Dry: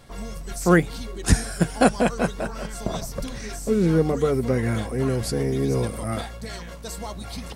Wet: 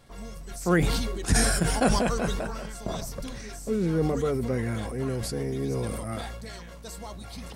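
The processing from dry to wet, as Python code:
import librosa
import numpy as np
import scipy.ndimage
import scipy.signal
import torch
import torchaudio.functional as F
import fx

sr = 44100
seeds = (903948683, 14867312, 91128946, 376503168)

y = fx.sustainer(x, sr, db_per_s=29.0)
y = F.gain(torch.from_numpy(y), -6.5).numpy()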